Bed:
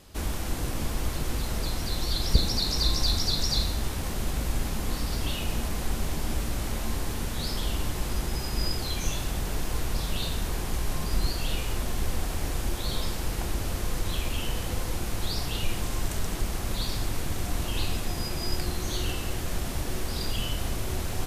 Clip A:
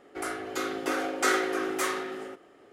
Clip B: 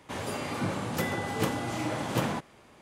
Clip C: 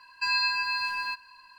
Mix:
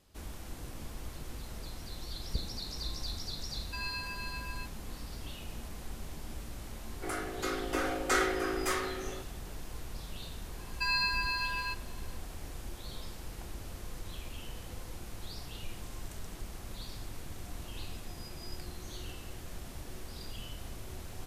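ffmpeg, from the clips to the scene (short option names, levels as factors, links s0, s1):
-filter_complex "[3:a]asplit=2[s0][s1];[0:a]volume=0.211[s2];[s0]atrim=end=1.58,asetpts=PTS-STARTPTS,volume=0.224,afade=t=in:d=0.004:c=hsin,afade=t=out:st=1.576:d=0.004:c=hsin,adelay=3510[s3];[1:a]atrim=end=2.72,asetpts=PTS-STARTPTS,volume=0.668,afade=t=in:d=0.004:c=hsin,afade=t=out:st=2.716:d=0.004:c=hsin,adelay=6870[s4];[s1]atrim=end=1.58,asetpts=PTS-STARTPTS,volume=0.596,afade=t=in:d=0.004:c=hsin,afade=t=out:st=1.576:d=0.004:c=hsin,adelay=10590[s5];[s2][s3][s4][s5]amix=inputs=4:normalize=0"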